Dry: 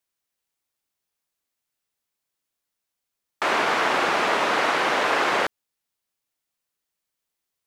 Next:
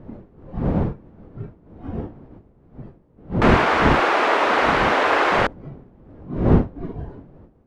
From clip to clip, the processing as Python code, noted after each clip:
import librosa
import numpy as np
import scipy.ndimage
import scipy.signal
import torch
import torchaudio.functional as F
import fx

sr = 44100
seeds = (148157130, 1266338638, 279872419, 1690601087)

y = fx.dmg_wind(x, sr, seeds[0], corner_hz=290.0, level_db=-30.0)
y = fx.lowpass(y, sr, hz=2100.0, slope=6)
y = fx.noise_reduce_blind(y, sr, reduce_db=9)
y = y * librosa.db_to_amplitude(5.0)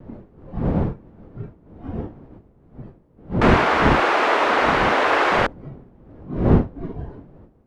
y = fx.vibrato(x, sr, rate_hz=1.0, depth_cents=30.0)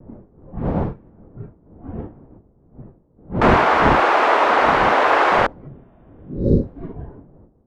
y = fx.env_lowpass(x, sr, base_hz=920.0, full_db=-14.5)
y = fx.spec_repair(y, sr, seeds[1], start_s=5.71, length_s=0.95, low_hz=600.0, high_hz=3700.0, source='after')
y = fx.dynamic_eq(y, sr, hz=850.0, q=0.76, threshold_db=-31.0, ratio=4.0, max_db=6)
y = y * librosa.db_to_amplitude(-1.5)